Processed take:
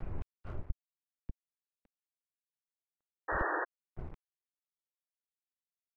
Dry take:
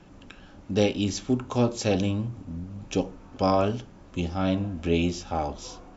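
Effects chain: self-modulated delay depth 0.47 ms; low-pass that closes with the level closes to 870 Hz, closed at -20.5 dBFS; reverse; compression 10:1, threshold -33 dBFS, peak gain reduction 15 dB; reverse; dynamic bell 270 Hz, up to -4 dB, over -53 dBFS, Q 3.6; inverted gate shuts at -38 dBFS, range -37 dB; mistuned SSB -200 Hz 150–2600 Hz; tilt EQ -2.5 dB/octave; crossover distortion -55 dBFS; painted sound noise, 3.28–3.65 s, 300–1900 Hz -40 dBFS; trim +6.5 dB

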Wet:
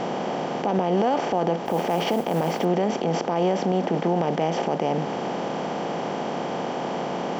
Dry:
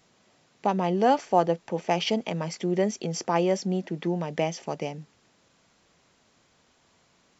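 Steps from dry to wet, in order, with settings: spectral levelling over time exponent 0.4; low-pass 1.4 kHz 6 dB/octave; 1.65–2.65 s: modulation noise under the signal 25 dB; in parallel at +2 dB: compression, threshold -28 dBFS, peak gain reduction 14.5 dB; on the sum: peak limiter -13 dBFS, peak gain reduction 10.5 dB

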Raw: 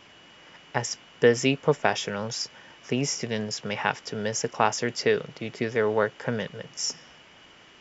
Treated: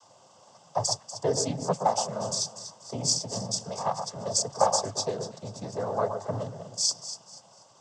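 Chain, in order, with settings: FFT filter 170 Hz 0 dB, 390 Hz -14 dB, 600 Hz +7 dB, 960 Hz +3 dB, 2.1 kHz -26 dB, 5.6 kHz +8 dB; noise-vocoded speech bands 16; echo whose repeats swap between lows and highs 121 ms, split 1.6 kHz, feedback 55%, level -7 dB; trim -3 dB

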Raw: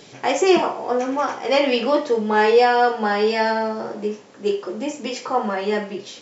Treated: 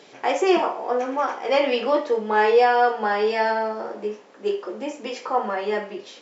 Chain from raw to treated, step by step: Bessel high-pass 380 Hz, order 2; treble shelf 4.1 kHz -11.5 dB

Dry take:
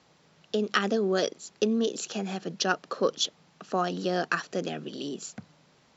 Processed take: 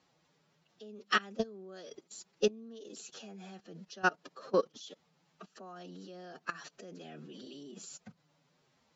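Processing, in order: level held to a coarse grid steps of 24 dB; time stretch by phase-locked vocoder 1.5×

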